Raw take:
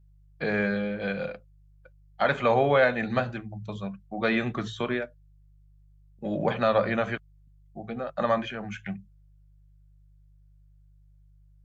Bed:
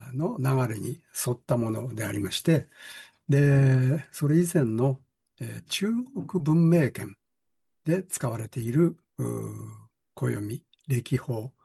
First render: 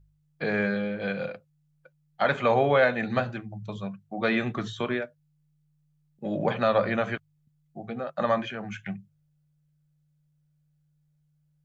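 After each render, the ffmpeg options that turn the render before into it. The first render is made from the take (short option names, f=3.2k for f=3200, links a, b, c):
-af "bandreject=f=50:t=h:w=4,bandreject=f=100:t=h:w=4"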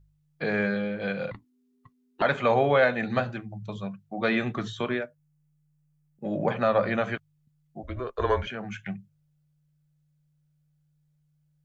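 -filter_complex "[0:a]asettb=1/sr,asplit=3[a][b][c];[a]atrim=end=1.314[d];[b]atrim=start=1.31:end=2.22,asetpts=PTS-STARTPTS,afade=t=in:d=0.004:c=qsin,afade=t=out:st=0.906:d=0.004:c=qsin,afreqshift=-400[e];[c]atrim=start=2.216[f];[d][e]acrossfade=d=0.004:c1=hsin:c2=qsin[g];[g][f]acrossfade=d=0.004:c1=qsin:c2=hsin,asettb=1/sr,asplit=3[h][i][j];[h]atrim=end=5.024[k];[i]atrim=start=5.02:end=6.83,asetpts=PTS-STARTPTS,afade=t=in:d=0.004:c=qsin,afade=t=out:st=1.806:d=0.004:c=qsin,equalizer=f=3.8k:w=1.5:g=-6[l];[j]atrim=start=6.826[m];[k][l]acrossfade=d=0.004:c1=hsin:c2=qsin[n];[n][m]acrossfade=d=0.004:c1=qsin:c2=hsin,asettb=1/sr,asplit=3[o][p][q];[o]atrim=end=7.834[r];[p]atrim=start=7.83:end=8.47,asetpts=PTS-STARTPTS,afade=t=in:d=0.004:c=qsin,afade=t=out:st=0.636:d=0.004:c=qsin,afreqshift=-140[s];[q]atrim=start=8.466[t];[r][s]acrossfade=d=0.004:c1=hsin:c2=qsin[u];[u][t]acrossfade=d=0.004:c1=qsin:c2=hsin"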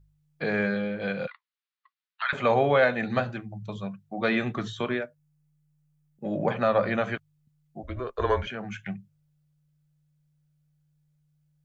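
-filter_complex "[0:a]asettb=1/sr,asplit=3[a][b][c];[a]atrim=end=1.274[d];[b]atrim=start=1.27:end=2.33,asetpts=PTS-STARTPTS,afade=t=in:d=0.004:c=qsin,afade=t=out:st=1.056:d=0.004:c=qsin,asuperpass=centerf=2300:order=8:qfactor=0.66[e];[c]atrim=start=2.326[f];[d][e]acrossfade=d=0.004:c1=hsin:c2=qsin[g];[g][f]acrossfade=d=0.004:c1=qsin:c2=hsin"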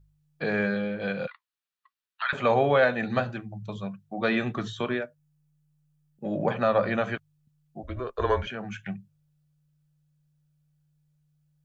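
-af "bandreject=f=2.1k:w=15"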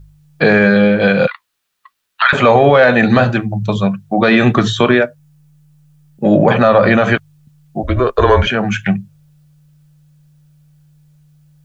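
-af "acontrast=54,alimiter=level_in=13.5dB:limit=-1dB:release=50:level=0:latency=1"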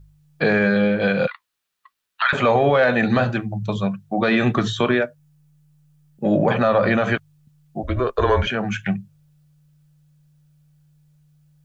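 -af "volume=-7.5dB"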